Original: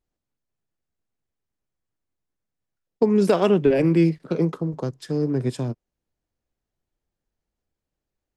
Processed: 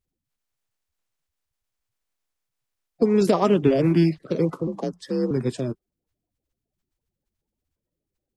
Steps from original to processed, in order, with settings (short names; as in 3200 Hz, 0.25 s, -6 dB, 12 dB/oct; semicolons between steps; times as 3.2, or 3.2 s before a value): bin magnitudes rounded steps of 30 dB; 4.67–5.31 frequency shift +44 Hz